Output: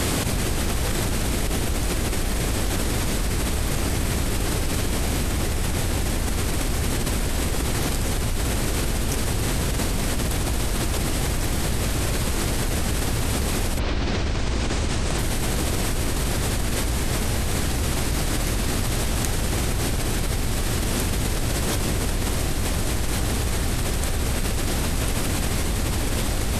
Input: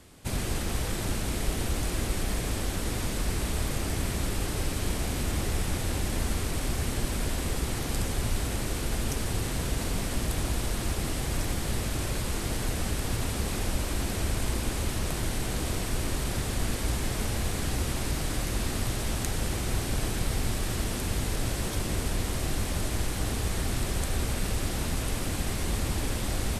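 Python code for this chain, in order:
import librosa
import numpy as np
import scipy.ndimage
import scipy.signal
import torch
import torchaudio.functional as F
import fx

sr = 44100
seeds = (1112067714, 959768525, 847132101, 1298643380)

y = fx.lowpass(x, sr, hz=fx.line((13.78, 4700.0), (15.17, 9400.0)), slope=24, at=(13.78, 15.17), fade=0.02)
y = fx.env_flatten(y, sr, amount_pct=100)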